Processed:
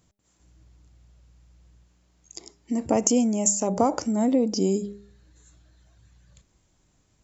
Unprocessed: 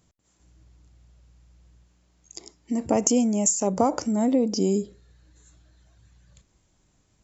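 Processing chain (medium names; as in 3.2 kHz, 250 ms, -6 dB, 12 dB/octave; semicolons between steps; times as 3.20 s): de-hum 202.7 Hz, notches 4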